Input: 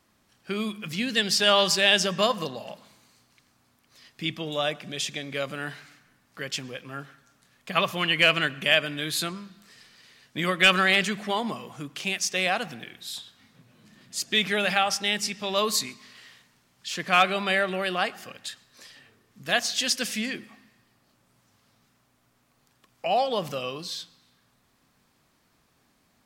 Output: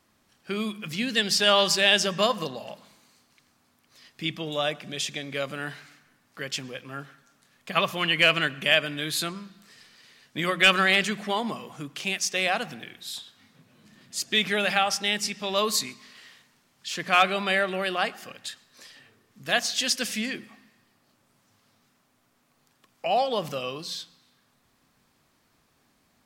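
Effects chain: hum notches 60/120/180 Hz

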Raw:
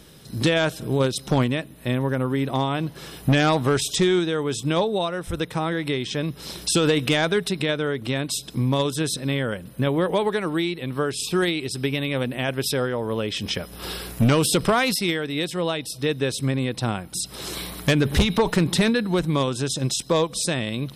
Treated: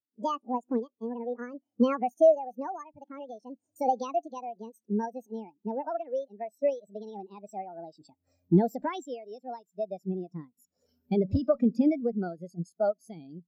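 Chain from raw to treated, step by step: gliding tape speed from 186% -> 125%; bass shelf 110 Hz -4 dB; spectral contrast expander 2.5:1

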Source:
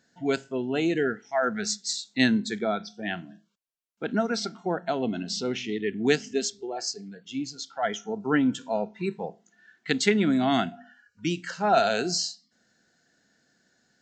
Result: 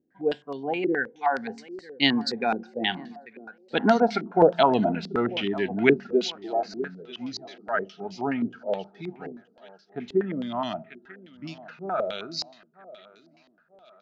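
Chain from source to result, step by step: Doppler pass-by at 4.24 s, 28 m/s, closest 30 m; thinning echo 943 ms, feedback 49%, high-pass 180 Hz, level -17.5 dB; dynamic bell 870 Hz, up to +6 dB, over -51 dBFS, Q 2.8; step-sequenced low-pass 9.5 Hz 360–4800 Hz; trim +5 dB

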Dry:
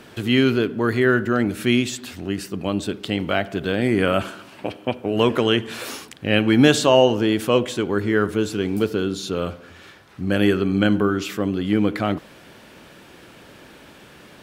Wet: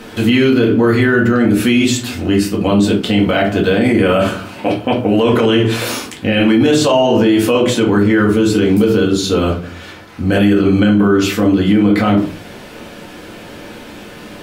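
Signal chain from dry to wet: simulated room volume 170 m³, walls furnished, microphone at 2 m; loudness maximiser +10.5 dB; trim -3 dB

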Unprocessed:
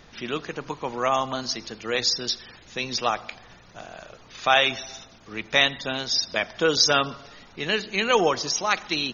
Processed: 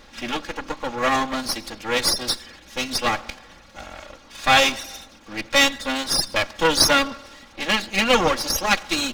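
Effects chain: comb filter that takes the minimum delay 3.6 ms; trim +4.5 dB

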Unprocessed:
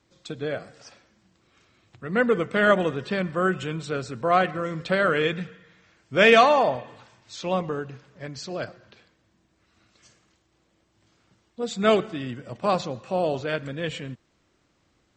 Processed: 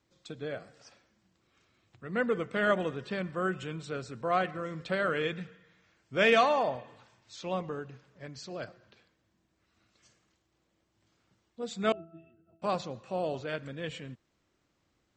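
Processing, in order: 11.92–12.62 s: pitch-class resonator E, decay 0.3 s; trim -8 dB

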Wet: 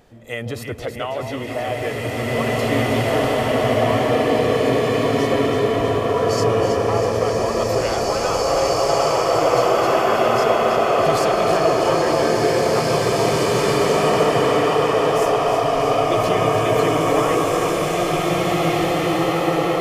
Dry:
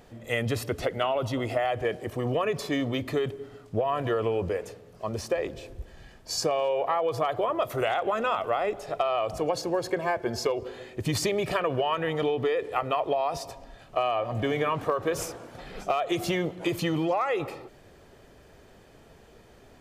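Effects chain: on a send: echo whose repeats swap between lows and highs 161 ms, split 1.1 kHz, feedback 83%, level -6 dB; on the sum: swelling reverb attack 2500 ms, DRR -8.5 dB

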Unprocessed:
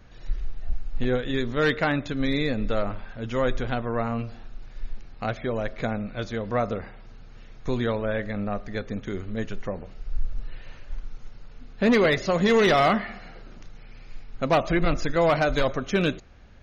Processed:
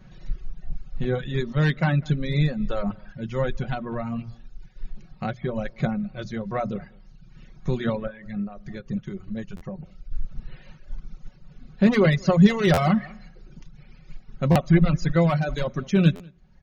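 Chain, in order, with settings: 8.07–10.12 s: compression, threshold -31 dBFS, peak gain reduction 8.5 dB; peaking EQ 150 Hz +15 dB 0.99 oct; hum notches 60/120/180/240 Hz; comb 5.4 ms, depth 46%; echo from a far wall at 34 m, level -14 dB; reverb removal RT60 1 s; buffer glitch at 9.56/12.73/14.51/16.15 s, samples 512, times 3; random flutter of the level, depth 65%

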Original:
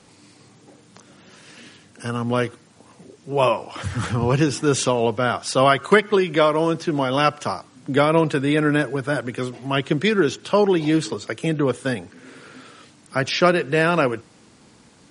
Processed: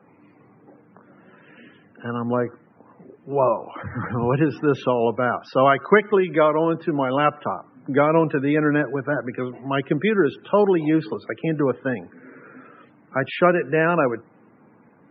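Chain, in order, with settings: 2.24–3.96 s: low-pass that closes with the level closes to 1.3 kHz, closed at -16 dBFS; band-pass 140–2300 Hz; loudest bins only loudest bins 64

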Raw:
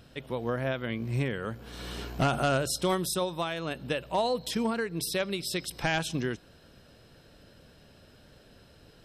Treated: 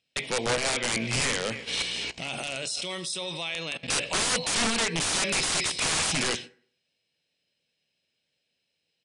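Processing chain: high-pass 91 Hz 12 dB/octave; resonant high shelf 1.8 kHz +8 dB, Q 3; speakerphone echo 310 ms, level -19 dB; gate -42 dBFS, range -34 dB; reverberation RT60 0.55 s, pre-delay 3 ms, DRR 10 dB; 1.82–3.88 s: level held to a coarse grid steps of 20 dB; tone controls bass +3 dB, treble +10 dB; overdrive pedal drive 15 dB, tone 2.1 kHz, clips at -2 dBFS; integer overflow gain 19 dB; steep low-pass 10 kHz 96 dB/octave

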